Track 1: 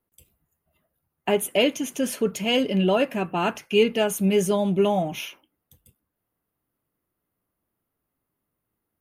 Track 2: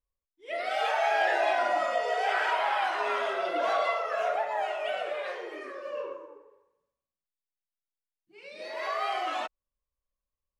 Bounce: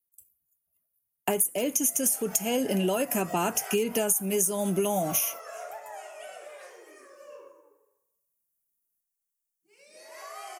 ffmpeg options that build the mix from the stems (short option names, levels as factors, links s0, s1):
-filter_complex "[0:a]agate=range=0.0708:threshold=0.00501:ratio=16:detection=peak,asoftclip=type=hard:threshold=0.335,volume=1.19,asplit=2[s0][s1];[1:a]adelay=1350,volume=0.266[s2];[s1]apad=whole_len=526693[s3];[s2][s3]sidechaincompress=threshold=0.0708:ratio=8:attack=16:release=179[s4];[s0][s4]amix=inputs=2:normalize=0,acrossover=split=220|1400[s5][s6][s7];[s5]acompressor=threshold=0.0224:ratio=4[s8];[s6]acompressor=threshold=0.1:ratio=4[s9];[s7]acompressor=threshold=0.0224:ratio=4[s10];[s8][s9][s10]amix=inputs=3:normalize=0,aexciter=amount=12.2:drive=4.9:freq=5700,acompressor=threshold=0.0794:ratio=12"